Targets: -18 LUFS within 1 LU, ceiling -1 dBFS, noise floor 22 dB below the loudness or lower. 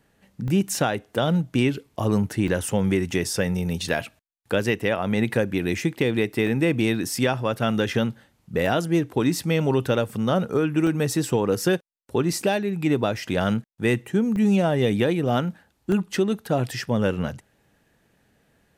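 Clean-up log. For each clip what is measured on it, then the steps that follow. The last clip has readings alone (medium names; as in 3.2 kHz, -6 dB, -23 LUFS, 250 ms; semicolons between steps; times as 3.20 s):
dropouts 8; longest dropout 1.7 ms; loudness -24.0 LUFS; peak level -8.5 dBFS; loudness target -18.0 LUFS
-> interpolate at 0.48/2.48/6.47/8.66/10.87/12.33/14.36/15.92 s, 1.7 ms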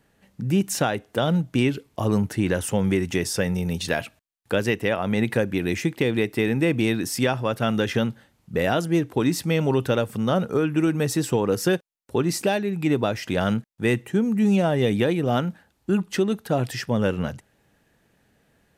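dropouts 0; loudness -24.0 LUFS; peak level -8.5 dBFS; loudness target -18.0 LUFS
-> trim +6 dB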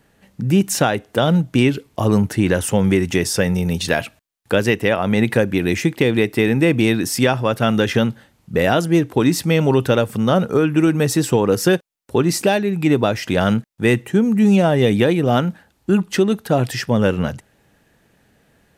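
loudness -18.0 LUFS; peak level -2.5 dBFS; noise floor -60 dBFS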